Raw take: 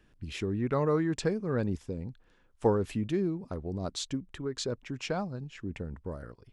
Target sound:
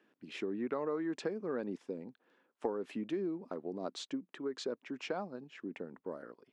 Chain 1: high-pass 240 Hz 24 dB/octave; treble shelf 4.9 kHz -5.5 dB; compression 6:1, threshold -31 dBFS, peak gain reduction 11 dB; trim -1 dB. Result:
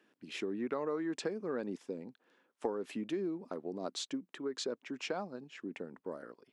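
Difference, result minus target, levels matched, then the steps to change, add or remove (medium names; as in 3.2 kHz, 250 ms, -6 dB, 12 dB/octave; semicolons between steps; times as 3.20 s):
8 kHz band +6.5 dB
change: treble shelf 4.9 kHz -16 dB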